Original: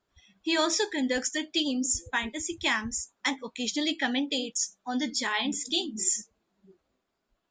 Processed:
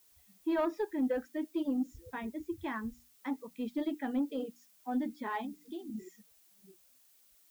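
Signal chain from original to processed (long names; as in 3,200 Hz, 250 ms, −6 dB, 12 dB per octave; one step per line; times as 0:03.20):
low-pass filter 1,200 Hz 12 dB per octave
mains-hum notches 60/120/180/240/300 Hz
reverb reduction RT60 0.56 s
harmonic and percussive parts rebalanced percussive −9 dB
0:05.43–0:05.90: downward compressor, threshold −39 dBFS, peak gain reduction 11 dB
soft clipping −22.5 dBFS, distortion −21 dB
background noise blue −65 dBFS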